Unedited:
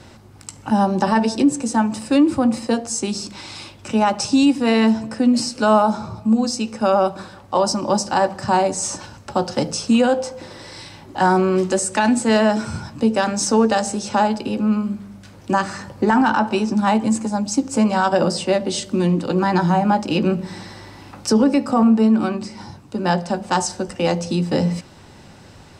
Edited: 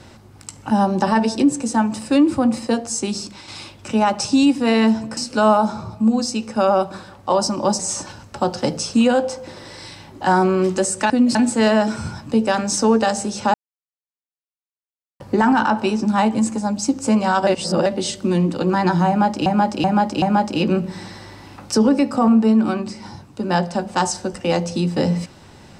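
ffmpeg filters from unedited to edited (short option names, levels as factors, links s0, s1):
-filter_complex "[0:a]asplit=13[s0][s1][s2][s3][s4][s5][s6][s7][s8][s9][s10][s11][s12];[s0]atrim=end=3.48,asetpts=PTS-STARTPTS,afade=t=out:st=3.18:d=0.3:silence=0.501187[s13];[s1]atrim=start=3.48:end=5.172,asetpts=PTS-STARTPTS,afade=t=in:d=0.004:c=hsin:silence=0.501187[s14];[s2]atrim=start=5.418:end=8.042[s15];[s3]atrim=start=8.728:end=12.042[s16];[s4]atrim=start=5.168:end=5.422[s17];[s5]atrim=start=12.038:end=14.23,asetpts=PTS-STARTPTS,afade=t=out:st=2.188:d=0.004:c=hsin[s18];[s6]atrim=start=14.23:end=15.89,asetpts=PTS-STARTPTS,volume=0[s19];[s7]atrim=start=15.89:end=18.162,asetpts=PTS-STARTPTS,afade=t=in:d=0.004:c=hsin[s20];[s8]atrim=start=18.158:end=18.552,asetpts=PTS-STARTPTS,areverse[s21];[s9]atrim=start=18.548:end=20.152[s22];[s10]atrim=start=19.768:end=20.152[s23];[s11]atrim=start=19.768:end=20.152[s24];[s12]atrim=start=19.768[s25];[s13][s14]concat=n=2:v=0:a=1[s26];[s26][s15]acrossfade=d=0.004:c1=hsin:c2=hsin[s27];[s27][s16]acrossfade=d=0.004:c1=hsin:c2=hsin[s28];[s28][s17]acrossfade=d=0.004:c1=hsin:c2=hsin[s29];[s18][s19][s20]concat=n=3:v=0:a=1[s30];[s29][s30]acrossfade=d=0.004:c1=hsin:c2=hsin[s31];[s31][s21]acrossfade=d=0.004:c1=hsin:c2=hsin[s32];[s32][s22]acrossfade=d=0.004:c1=hsin:c2=hsin[s33];[s33][s23]acrossfade=d=0.004:c1=hsin:c2=hsin[s34];[s34][s24]acrossfade=d=0.004:c1=hsin:c2=hsin[s35];[s35][s25]acrossfade=d=0.004:c1=hsin:c2=hsin"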